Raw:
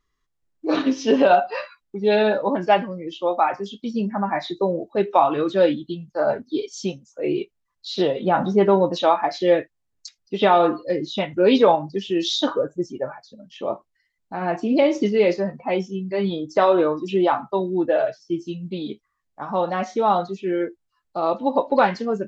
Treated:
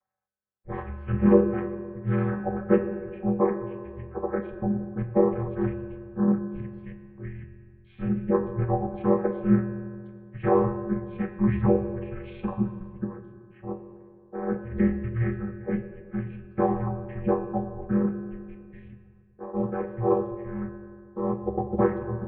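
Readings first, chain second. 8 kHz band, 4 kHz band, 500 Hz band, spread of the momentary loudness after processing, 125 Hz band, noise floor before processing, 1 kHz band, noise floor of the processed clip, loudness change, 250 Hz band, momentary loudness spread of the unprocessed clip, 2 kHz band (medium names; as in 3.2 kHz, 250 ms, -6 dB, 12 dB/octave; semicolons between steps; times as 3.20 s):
no reading, under -30 dB, -8.0 dB, 16 LU, +4.5 dB, -75 dBFS, -12.5 dB, -55 dBFS, -6.0 dB, -2.0 dB, 13 LU, -12.0 dB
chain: vocoder on a held chord major triad, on F#3; FDN reverb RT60 2.2 s, low-frequency decay 0.95×, high-frequency decay 0.6×, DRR 6 dB; mistuned SSB -350 Hz 560–2400 Hz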